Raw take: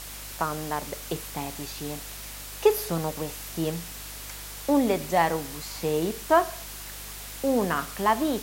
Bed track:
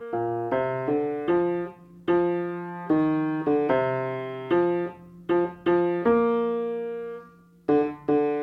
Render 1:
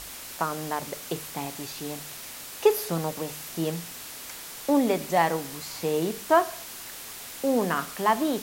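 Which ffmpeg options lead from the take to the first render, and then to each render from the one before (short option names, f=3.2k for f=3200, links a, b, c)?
-af "bandreject=f=50:t=h:w=4,bandreject=f=100:t=h:w=4,bandreject=f=150:t=h:w=4,bandreject=f=200:t=h:w=4"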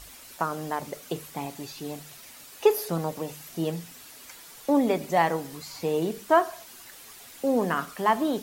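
-af "afftdn=nr=9:nf=-41"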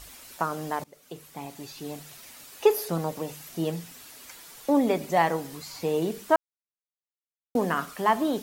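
-filter_complex "[0:a]asplit=4[a][b][c][d];[a]atrim=end=0.84,asetpts=PTS-STARTPTS,afade=t=out:st=0.836:d=0.004:c=hsin:silence=0.0841395[e];[b]atrim=start=0.84:end=6.36,asetpts=PTS-STARTPTS,afade=t=in:d=1.57:c=qsin:silence=0.0841395,afade=t=out:st=5.516:d=0.004:c=hsin[f];[c]atrim=start=6.36:end=7.55,asetpts=PTS-STARTPTS,volume=0[g];[d]atrim=start=7.55,asetpts=PTS-STARTPTS,afade=t=in:d=0.004:c=hsin[h];[e][f][g][h]concat=n=4:v=0:a=1"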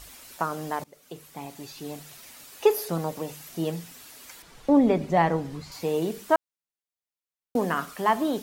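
-filter_complex "[0:a]asettb=1/sr,asplit=3[a][b][c];[a]atrim=end=4.424[d];[b]atrim=start=4.42:end=5.72,asetpts=PTS-STARTPTS,afade=t=in:d=0.004:c=qsin,afade=t=out:st=1.296:d=0.004:c=qsin,aemphasis=mode=reproduction:type=bsi[e];[c]atrim=start=5.716[f];[d][e]acrossfade=d=0.004:c1=hsin:c2=qsin[g];[g][f]acrossfade=d=0.004:c1=qsin:c2=hsin"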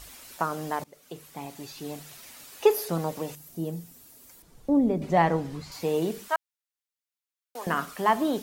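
-filter_complex "[0:a]asettb=1/sr,asplit=3[a][b][c];[a]atrim=end=3.354[d];[b]atrim=start=3.35:end=5.02,asetpts=PTS-STARTPTS,afade=t=in:d=0.004:c=qsin,afade=t=out:st=1.666:d=0.004:c=qsin,equalizer=f=2.2k:w=0.3:g=-14.5[e];[c]atrim=start=5.016[f];[d][e]acrossfade=d=0.004:c1=hsin:c2=qsin[g];[g][f]acrossfade=d=0.004:c1=qsin:c2=hsin,asettb=1/sr,asplit=3[h][i][j];[h]atrim=end=6.284[k];[i]atrim=start=6.28:end=7.67,asetpts=PTS-STARTPTS,afade=t=in:d=0.004:c=qsin,afade=t=out:st=1.386:d=0.004:c=qsin,highpass=1.1k[l];[j]atrim=start=7.666[m];[k][l]acrossfade=d=0.004:c1=hsin:c2=qsin[n];[n][m]acrossfade=d=0.004:c1=qsin:c2=hsin"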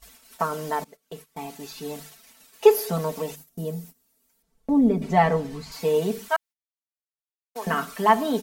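-af "agate=range=-19dB:threshold=-45dB:ratio=16:detection=peak,aecho=1:1:4.5:0.97"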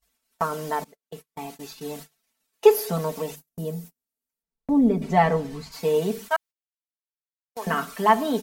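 -af "agate=range=-22dB:threshold=-40dB:ratio=16:detection=peak"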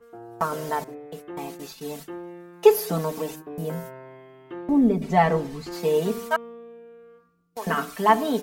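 -filter_complex "[1:a]volume=-15dB[a];[0:a][a]amix=inputs=2:normalize=0"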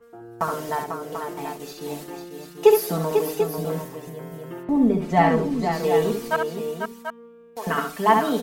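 -af "aecho=1:1:68|494|739:0.531|0.447|0.376"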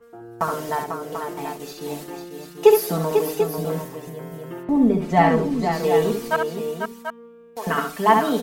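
-af "volume=1.5dB"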